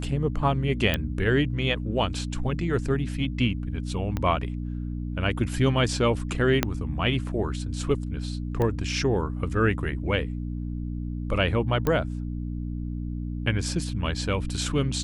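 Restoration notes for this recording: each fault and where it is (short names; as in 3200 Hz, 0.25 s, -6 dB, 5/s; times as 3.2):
hum 60 Hz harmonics 5 -31 dBFS
0.94 pop -10 dBFS
4.17 pop -15 dBFS
6.63 pop -6 dBFS
8.62 pop -16 dBFS
11.87 pop -12 dBFS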